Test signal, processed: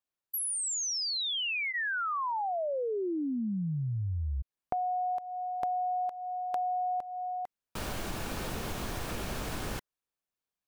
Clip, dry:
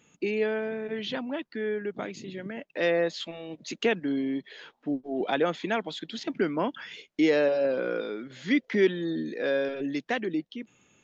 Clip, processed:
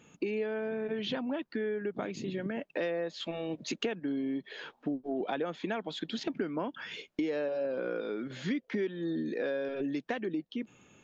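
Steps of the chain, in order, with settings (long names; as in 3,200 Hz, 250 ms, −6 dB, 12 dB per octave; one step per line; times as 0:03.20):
high-shelf EQ 2,600 Hz −6.5 dB
notch filter 2,000 Hz, Q 18
downward compressor 6 to 1, threshold −36 dBFS
level +5 dB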